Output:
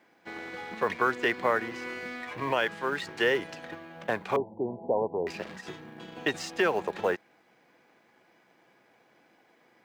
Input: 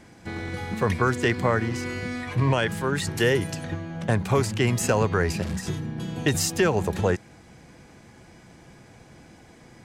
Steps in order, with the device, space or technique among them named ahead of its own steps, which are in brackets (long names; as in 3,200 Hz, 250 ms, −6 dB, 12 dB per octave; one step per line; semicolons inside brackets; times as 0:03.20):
phone line with mismatched companding (band-pass filter 330–3,300 Hz; mu-law and A-law mismatch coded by A)
low-shelf EQ 450 Hz −4 dB
0:04.36–0:05.27: Butterworth low-pass 950 Hz 96 dB per octave